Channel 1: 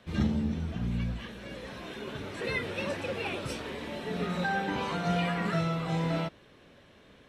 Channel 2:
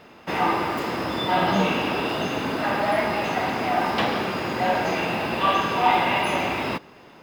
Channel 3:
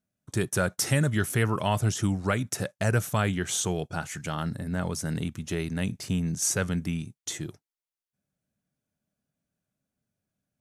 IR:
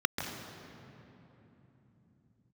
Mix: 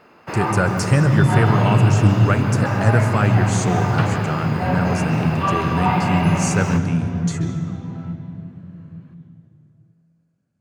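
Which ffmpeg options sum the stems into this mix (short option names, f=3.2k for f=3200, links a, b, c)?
-filter_complex "[0:a]equalizer=f=930:t=o:w=2.2:g=5.5,acompressor=threshold=-38dB:ratio=2.5,adelay=1850,volume=-11dB,asplit=2[a][b];[b]volume=-8.5dB[c];[1:a]volume=-3.5dB,asplit=2[d][e];[e]volume=-13.5dB[f];[2:a]lowpass=f=8.9k:w=0.5412,lowpass=f=8.9k:w=1.3066,equalizer=f=120:t=o:w=2:g=7.5,volume=3dB,asplit=2[g][h];[h]volume=-12.5dB[i];[3:a]atrim=start_sample=2205[j];[c][f][i]amix=inputs=3:normalize=0[k];[k][j]afir=irnorm=-1:irlink=0[l];[a][d][g][l]amix=inputs=4:normalize=0"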